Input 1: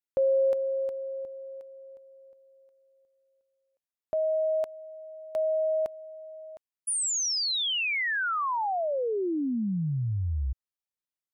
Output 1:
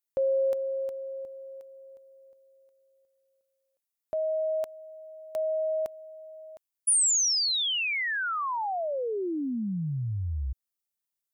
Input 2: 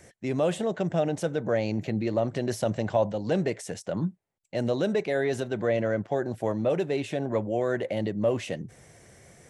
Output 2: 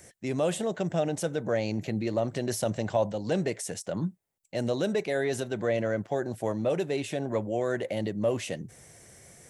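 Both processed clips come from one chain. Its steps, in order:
high-shelf EQ 6,200 Hz +11.5 dB
level −2 dB

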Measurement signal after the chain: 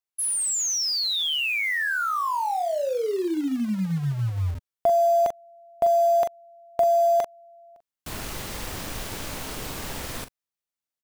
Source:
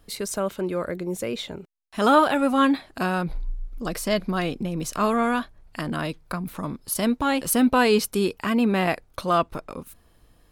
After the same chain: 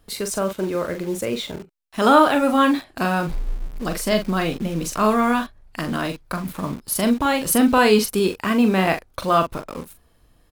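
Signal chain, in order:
double-tracking delay 42 ms −7.5 dB
in parallel at −5 dB: bit-depth reduction 6 bits, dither none
on the sum: level −1 dB

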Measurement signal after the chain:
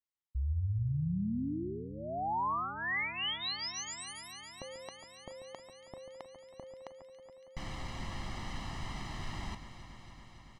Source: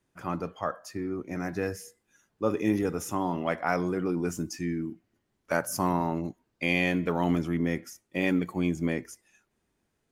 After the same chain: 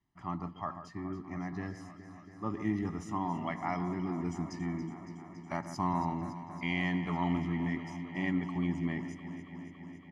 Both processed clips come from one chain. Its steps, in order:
high-frequency loss of the air 120 metres
comb filter 1 ms, depth 92%
delay that swaps between a low-pass and a high-pass 140 ms, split 2,100 Hz, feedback 88%, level −11 dB
level −8 dB

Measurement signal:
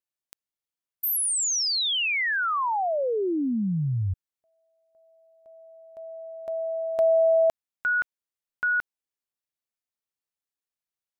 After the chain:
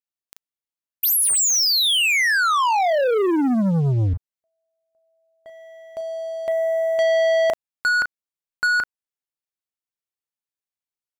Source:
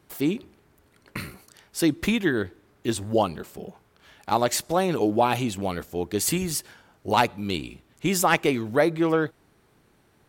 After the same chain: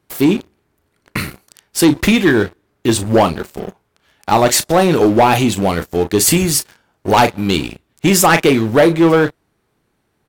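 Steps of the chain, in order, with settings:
double-tracking delay 36 ms −12 dB
leveller curve on the samples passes 3
level +1.5 dB

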